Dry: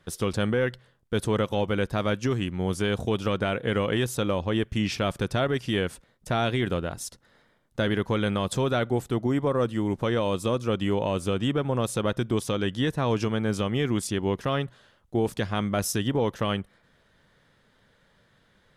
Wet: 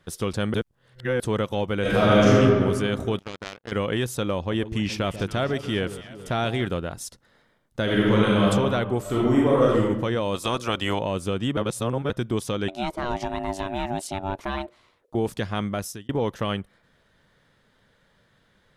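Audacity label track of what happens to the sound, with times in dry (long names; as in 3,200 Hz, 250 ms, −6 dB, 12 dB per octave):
0.540000	1.200000	reverse
1.800000	2.340000	thrown reverb, RT60 1.9 s, DRR −10 dB
3.190000	3.720000	power curve on the samples exponent 3
4.370000	6.670000	delay that swaps between a low-pass and a high-pass 140 ms, split 910 Hz, feedback 76%, level −12 dB
7.830000	8.450000	thrown reverb, RT60 1.7 s, DRR −5.5 dB
9.010000	9.800000	thrown reverb, RT60 0.95 s, DRR −5.5 dB
10.340000	10.990000	ceiling on every frequency bin ceiling under each frame's peak by 16 dB
11.570000	12.100000	reverse
12.680000	15.150000	ring modulation 480 Hz
15.660000	16.090000	fade out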